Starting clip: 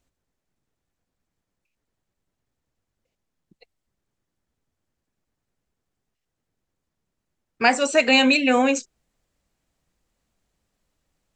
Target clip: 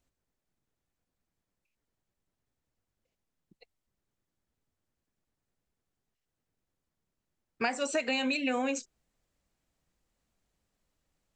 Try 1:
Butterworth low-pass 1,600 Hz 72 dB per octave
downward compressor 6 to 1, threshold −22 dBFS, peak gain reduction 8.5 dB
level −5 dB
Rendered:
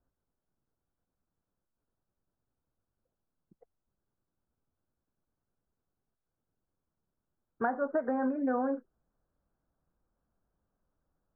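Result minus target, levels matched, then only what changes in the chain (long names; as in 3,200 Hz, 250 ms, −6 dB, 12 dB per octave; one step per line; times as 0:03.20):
2,000 Hz band −7.0 dB
remove: Butterworth low-pass 1,600 Hz 72 dB per octave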